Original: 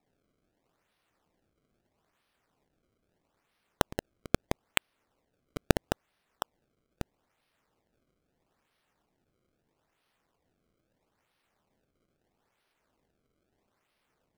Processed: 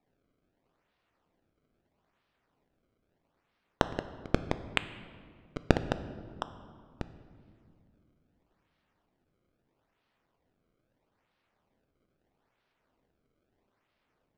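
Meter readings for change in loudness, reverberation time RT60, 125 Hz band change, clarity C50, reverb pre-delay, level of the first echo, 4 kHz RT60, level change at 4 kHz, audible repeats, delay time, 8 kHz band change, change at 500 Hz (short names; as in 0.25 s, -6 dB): -1.5 dB, 2.2 s, +0.5 dB, 13.0 dB, 3 ms, none, 1.3 s, -2.5 dB, none, none, -11.5 dB, 0.0 dB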